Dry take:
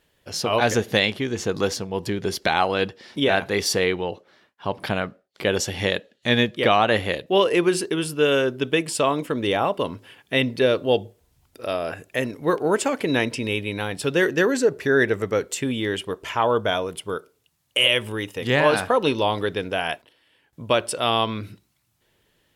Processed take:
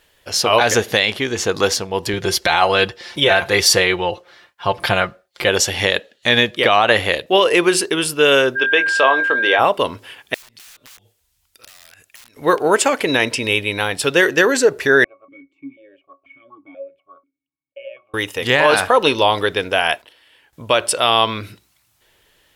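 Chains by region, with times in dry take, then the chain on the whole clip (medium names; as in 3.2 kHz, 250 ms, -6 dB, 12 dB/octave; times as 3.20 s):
2.13–5.49 s: high-pass 49 Hz + resonant low shelf 130 Hz +8.5 dB, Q 1.5 + comb 5.7 ms, depth 58%
8.55–9.58 s: band-pass 390–3700 Hz + whistle 1.6 kHz -26 dBFS + doubling 23 ms -9.5 dB
10.34–12.37 s: integer overflow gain 22 dB + amplifier tone stack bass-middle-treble 5-5-5 + compression 12:1, threshold -48 dBFS
15.04–18.14 s: pitch-class resonator C#, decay 0.13 s + stepped vowel filter 4.1 Hz
whole clip: peaking EQ 170 Hz -10.5 dB 2.5 oct; loudness maximiser +11 dB; trim -1 dB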